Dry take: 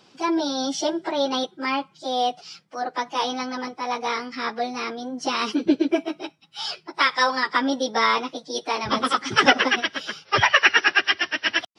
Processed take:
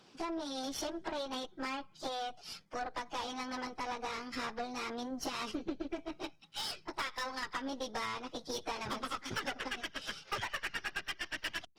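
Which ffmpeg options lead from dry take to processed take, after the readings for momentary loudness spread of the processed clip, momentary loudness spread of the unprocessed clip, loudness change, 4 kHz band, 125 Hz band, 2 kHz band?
3 LU, 13 LU, -17.0 dB, -16.0 dB, -12.5 dB, -18.5 dB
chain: -af "acompressor=threshold=-32dB:ratio=8,aeval=exprs='0.0841*(cos(1*acos(clip(val(0)/0.0841,-1,1)))-cos(1*PI/2))+0.0119*(cos(6*acos(clip(val(0)/0.0841,-1,1)))-cos(6*PI/2))':c=same,volume=-4.5dB" -ar 48000 -c:a libopus -b:a 20k

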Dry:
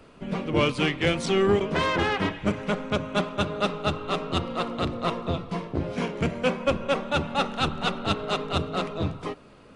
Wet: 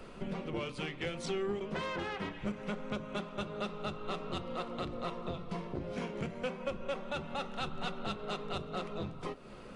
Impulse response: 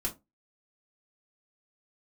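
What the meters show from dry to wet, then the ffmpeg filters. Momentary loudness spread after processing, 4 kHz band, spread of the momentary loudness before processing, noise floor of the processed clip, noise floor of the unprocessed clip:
4 LU, -13.0 dB, 7 LU, -48 dBFS, -50 dBFS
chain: -filter_complex "[0:a]acompressor=threshold=-39dB:ratio=4,asplit=2[a][b];[1:a]atrim=start_sample=2205[c];[b][c]afir=irnorm=-1:irlink=0,volume=-12.5dB[d];[a][d]amix=inputs=2:normalize=0"

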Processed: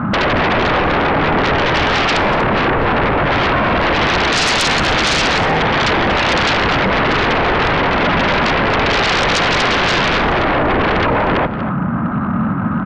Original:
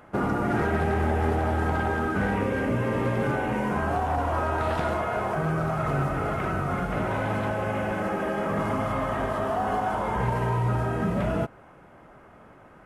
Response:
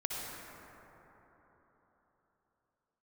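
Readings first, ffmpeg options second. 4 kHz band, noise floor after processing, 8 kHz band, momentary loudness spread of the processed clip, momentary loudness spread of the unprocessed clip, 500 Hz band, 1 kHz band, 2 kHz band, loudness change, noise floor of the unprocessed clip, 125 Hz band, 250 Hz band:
+28.0 dB, -19 dBFS, +21.5 dB, 3 LU, 3 LU, +10.5 dB, +12.5 dB, +17.5 dB, +12.5 dB, -51 dBFS, +7.0 dB, +10.5 dB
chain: -filter_complex "[0:a]highpass=92,lowshelf=f=310:t=q:w=3:g=12,acompressor=threshold=-22dB:ratio=8,lowpass=f=1.3k:t=q:w=3.4,aeval=exprs='0.237*sin(PI/2*8.91*val(0)/0.237)':c=same,asplit=2[a][b];[b]adelay=239.1,volume=-11dB,highshelf=f=4k:g=-5.38[c];[a][c]amix=inputs=2:normalize=0,asplit=2[d][e];[1:a]atrim=start_sample=2205[f];[e][f]afir=irnorm=-1:irlink=0,volume=-19.5dB[g];[d][g]amix=inputs=2:normalize=0"

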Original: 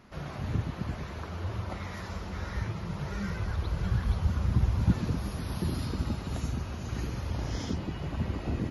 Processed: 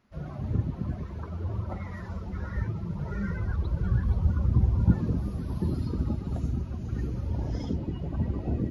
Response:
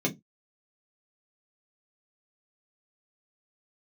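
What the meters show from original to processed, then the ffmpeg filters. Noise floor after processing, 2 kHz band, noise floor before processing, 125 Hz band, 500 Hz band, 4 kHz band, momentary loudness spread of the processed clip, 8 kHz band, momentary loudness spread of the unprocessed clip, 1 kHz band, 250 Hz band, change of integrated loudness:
-39 dBFS, -4.0 dB, -40 dBFS, +3.0 dB, +0.5 dB, under -10 dB, 11 LU, under -10 dB, 10 LU, -3.5 dB, +3.0 dB, +2.5 dB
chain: -af "bandreject=f=47.42:t=h:w=4,bandreject=f=94.84:t=h:w=4,bandreject=f=142.26:t=h:w=4,bandreject=f=189.68:t=h:w=4,bandreject=f=237.1:t=h:w=4,bandreject=f=284.52:t=h:w=4,bandreject=f=331.94:t=h:w=4,bandreject=f=379.36:t=h:w=4,bandreject=f=426.78:t=h:w=4,bandreject=f=474.2:t=h:w=4,bandreject=f=521.62:t=h:w=4,bandreject=f=569.04:t=h:w=4,bandreject=f=616.46:t=h:w=4,bandreject=f=663.88:t=h:w=4,bandreject=f=711.3:t=h:w=4,bandreject=f=758.72:t=h:w=4,bandreject=f=806.14:t=h:w=4,bandreject=f=853.56:t=h:w=4,bandreject=f=900.98:t=h:w=4,bandreject=f=948.4:t=h:w=4,bandreject=f=995.82:t=h:w=4,bandreject=f=1.04324k:t=h:w=4,bandreject=f=1.09066k:t=h:w=4,bandreject=f=1.13808k:t=h:w=4,bandreject=f=1.1855k:t=h:w=4,bandreject=f=1.23292k:t=h:w=4,bandreject=f=1.28034k:t=h:w=4,bandreject=f=1.32776k:t=h:w=4,afftdn=nr=16:nf=-37,volume=3.5dB"

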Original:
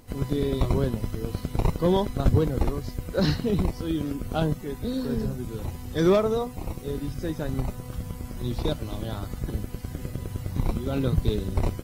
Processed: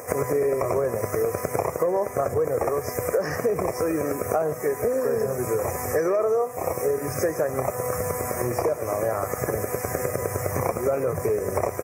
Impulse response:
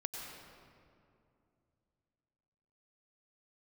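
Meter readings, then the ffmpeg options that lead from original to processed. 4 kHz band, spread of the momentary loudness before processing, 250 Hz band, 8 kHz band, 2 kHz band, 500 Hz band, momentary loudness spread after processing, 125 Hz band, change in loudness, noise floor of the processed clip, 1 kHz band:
-8.0 dB, 11 LU, -4.5 dB, +12.0 dB, +7.0 dB, +6.5 dB, 4 LU, -6.0 dB, +2.5 dB, -34 dBFS, +7.0 dB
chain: -filter_complex "[0:a]highpass=f=96:w=0.5412,highpass=f=96:w=1.3066,aecho=1:1:1.7:0.42,alimiter=limit=-19.5dB:level=0:latency=1:release=13,acontrast=70,lowshelf=f=310:t=q:w=1.5:g=-12.5,acompressor=threshold=-33dB:ratio=6,asuperstop=centerf=3600:order=8:qfactor=1.1,asplit=2[a][b];[b]adelay=140,highpass=300,lowpass=3.4k,asoftclip=type=hard:threshold=-31dB,volume=-23dB[c];[a][c]amix=inputs=2:normalize=0,asplit=2[d][e];[1:a]atrim=start_sample=2205,atrim=end_sample=6174[f];[e][f]afir=irnorm=-1:irlink=0,volume=-6dB[g];[d][g]amix=inputs=2:normalize=0,volume=9dB"

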